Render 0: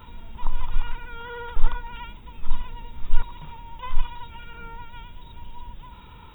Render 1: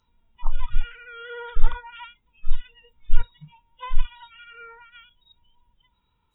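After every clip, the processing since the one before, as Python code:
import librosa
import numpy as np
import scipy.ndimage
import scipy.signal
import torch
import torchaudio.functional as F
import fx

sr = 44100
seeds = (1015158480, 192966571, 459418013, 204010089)

y = fx.noise_reduce_blind(x, sr, reduce_db=27)
y = F.gain(torch.from_numpy(y), 1.0).numpy()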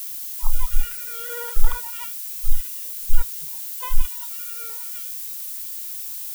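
y = fx.leveller(x, sr, passes=1)
y = fx.peak_eq(y, sr, hz=130.0, db=-13.0, octaves=0.62)
y = fx.dmg_noise_colour(y, sr, seeds[0], colour='violet', level_db=-31.0)
y = F.gain(torch.from_numpy(y), -1.0).numpy()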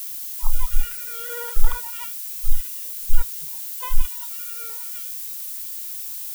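y = x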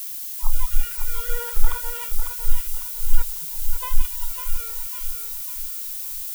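y = fx.echo_feedback(x, sr, ms=550, feedback_pct=41, wet_db=-7)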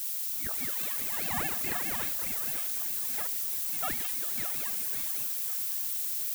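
y = scipy.signal.sosfilt(scipy.signal.butter(4, 200.0, 'highpass', fs=sr, output='sos'), x)
y = fx.doubler(y, sr, ms=46.0, db=-4)
y = fx.ring_lfo(y, sr, carrier_hz=750.0, swing_pct=70, hz=4.8)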